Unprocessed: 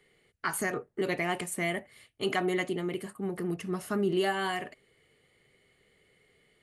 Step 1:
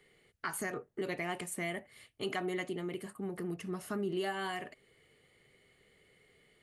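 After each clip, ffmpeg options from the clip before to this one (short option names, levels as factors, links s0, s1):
-af "acompressor=threshold=0.00562:ratio=1.5"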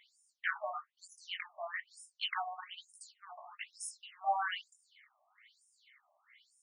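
-af "highshelf=f=8000:g=6.5,flanger=delay=15:depth=7.7:speed=0.32,afftfilt=real='re*between(b*sr/1024,810*pow(7300/810,0.5+0.5*sin(2*PI*1.1*pts/sr))/1.41,810*pow(7300/810,0.5+0.5*sin(2*PI*1.1*pts/sr))*1.41)':imag='im*between(b*sr/1024,810*pow(7300/810,0.5+0.5*sin(2*PI*1.1*pts/sr))/1.41,810*pow(7300/810,0.5+0.5*sin(2*PI*1.1*pts/sr))*1.41)':win_size=1024:overlap=0.75,volume=3.35"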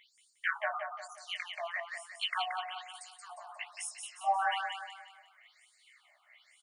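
-af "aecho=1:1:178|356|534|712|890:0.562|0.236|0.0992|0.0417|0.0175,volume=1.33"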